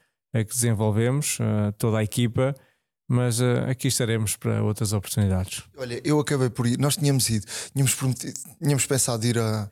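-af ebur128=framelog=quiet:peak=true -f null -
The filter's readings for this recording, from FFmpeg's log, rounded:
Integrated loudness:
  I:         -24.1 LUFS
  Threshold: -34.2 LUFS
Loudness range:
  LRA:         1.3 LU
  Threshold: -44.3 LUFS
  LRA low:   -24.8 LUFS
  LRA high:  -23.5 LUFS
True peak:
  Peak:       -9.7 dBFS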